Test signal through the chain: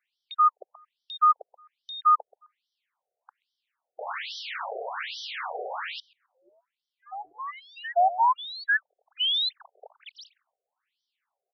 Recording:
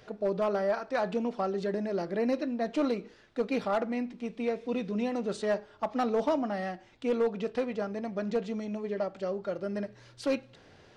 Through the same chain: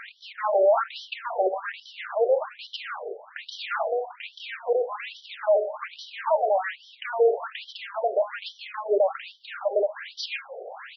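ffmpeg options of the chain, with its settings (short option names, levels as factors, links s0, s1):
-filter_complex "[0:a]asplit=2[s0][s1];[s1]highpass=f=720:p=1,volume=20,asoftclip=type=tanh:threshold=0.0944[s2];[s0][s2]amix=inputs=2:normalize=0,lowpass=f=1600:p=1,volume=0.501,asplit=2[s3][s4];[s4]adelay=130,lowpass=f=820:p=1,volume=0.237,asplit=2[s5][s6];[s6]adelay=130,lowpass=f=820:p=1,volume=0.21,asplit=2[s7][s8];[s8]adelay=130,lowpass=f=820:p=1,volume=0.21[s9];[s3][s5][s7][s9]amix=inputs=4:normalize=0,afftfilt=real='re*between(b*sr/1024,530*pow(4300/530,0.5+0.5*sin(2*PI*1.2*pts/sr))/1.41,530*pow(4300/530,0.5+0.5*sin(2*PI*1.2*pts/sr))*1.41)':imag='im*between(b*sr/1024,530*pow(4300/530,0.5+0.5*sin(2*PI*1.2*pts/sr))/1.41,530*pow(4300/530,0.5+0.5*sin(2*PI*1.2*pts/sr))*1.41)':win_size=1024:overlap=0.75,volume=2.51"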